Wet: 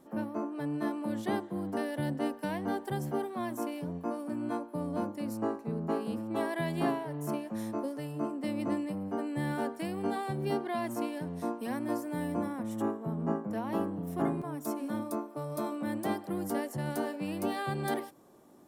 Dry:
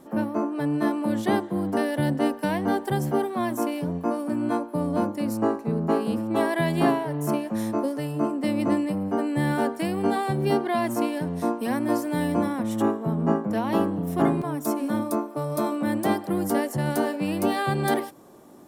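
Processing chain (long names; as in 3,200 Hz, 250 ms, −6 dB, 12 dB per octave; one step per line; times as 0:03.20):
0:11.93–0:14.53: dynamic equaliser 3,700 Hz, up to −5 dB, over −48 dBFS, Q 1.1
level −9 dB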